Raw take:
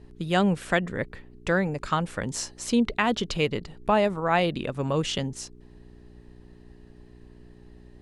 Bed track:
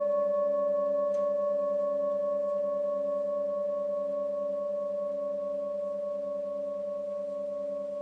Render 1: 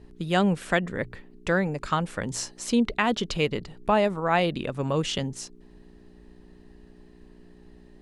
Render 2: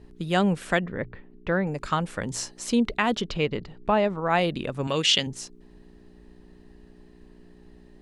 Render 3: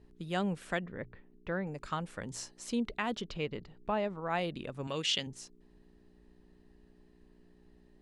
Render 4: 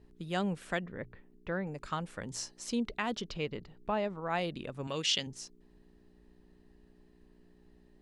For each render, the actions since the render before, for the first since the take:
de-hum 60 Hz, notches 2
0.84–1.67 s: distance through air 320 m; 3.21–4.30 s: distance through air 110 m; 4.87–5.27 s: frequency weighting D
trim -10.5 dB
dynamic bell 5.4 kHz, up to +5 dB, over -55 dBFS, Q 2

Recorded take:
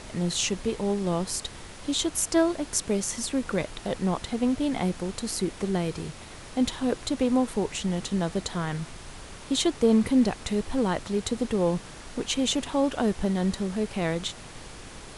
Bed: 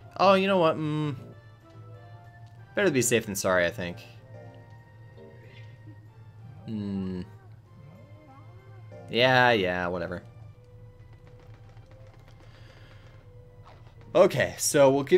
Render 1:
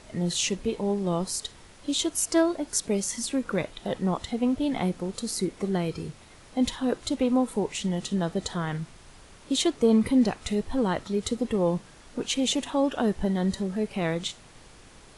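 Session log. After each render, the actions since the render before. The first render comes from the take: noise print and reduce 8 dB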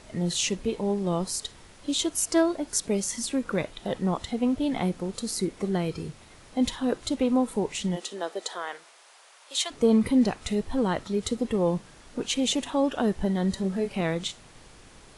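7.95–9.70 s: high-pass 320 Hz -> 730 Hz 24 dB/octave; 13.61–14.01 s: doubling 26 ms -6.5 dB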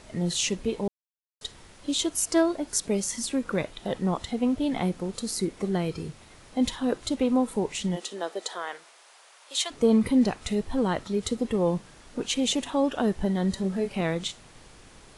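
0.88–1.41 s: mute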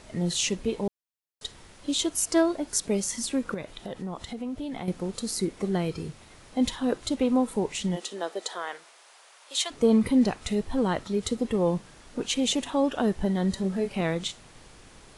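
3.54–4.88 s: compression 2.5:1, threshold -34 dBFS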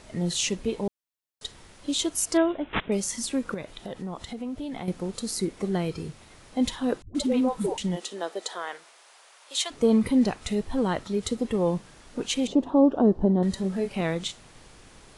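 2.37–2.92 s: careless resampling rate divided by 6×, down none, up filtered; 7.02–7.78 s: phase dispersion highs, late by 128 ms, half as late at 380 Hz; 12.47–13.43 s: FFT filter 110 Hz 0 dB, 310 Hz +8 dB, 1.1 kHz -1 dB, 2.1 kHz -19 dB, 4.6 kHz -14 dB, 8.6 kHz -25 dB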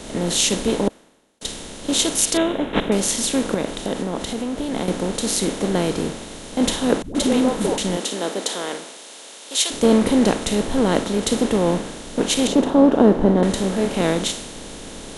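spectral levelling over time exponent 0.4; three bands expanded up and down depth 100%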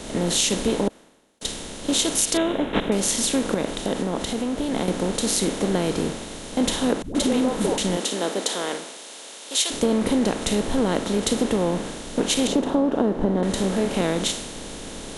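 compression 6:1, threshold -17 dBFS, peak gain reduction 9.5 dB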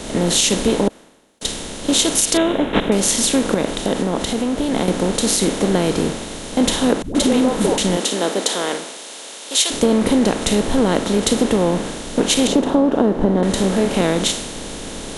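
trim +5.5 dB; peak limiter -2 dBFS, peak gain reduction 3 dB

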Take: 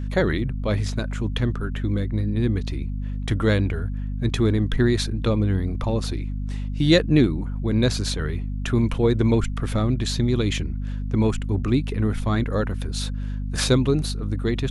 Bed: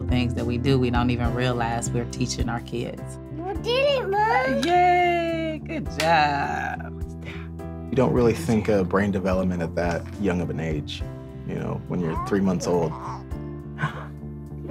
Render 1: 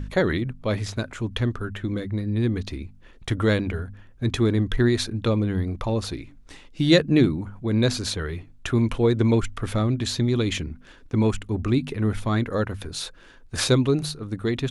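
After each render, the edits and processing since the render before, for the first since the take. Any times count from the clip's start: de-hum 50 Hz, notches 5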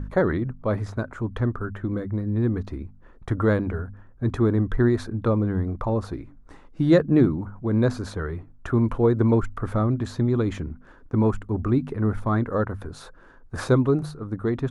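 resonant high shelf 1.9 kHz -13 dB, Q 1.5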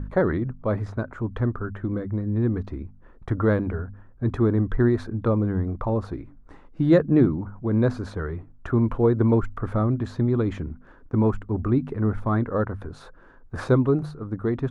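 treble shelf 4.4 kHz -12 dB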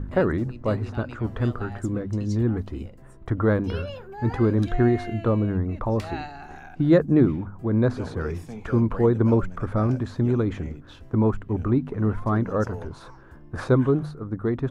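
add bed -16.5 dB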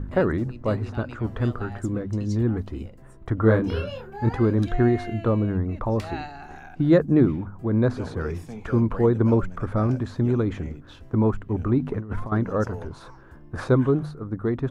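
3.41–4.29 s: doubling 27 ms -2.5 dB; 11.79–12.32 s: compressor with a negative ratio -27 dBFS, ratio -0.5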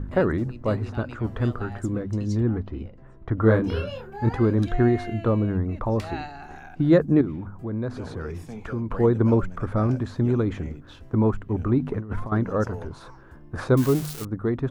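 2.40–3.38 s: distance through air 180 m; 7.21–8.91 s: compression 2:1, threshold -31 dBFS; 13.77–14.25 s: zero-crossing glitches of -20.5 dBFS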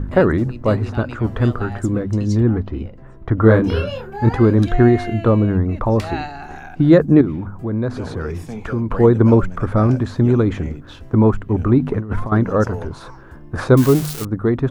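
trim +7.5 dB; peak limiter -1 dBFS, peak gain reduction 2 dB

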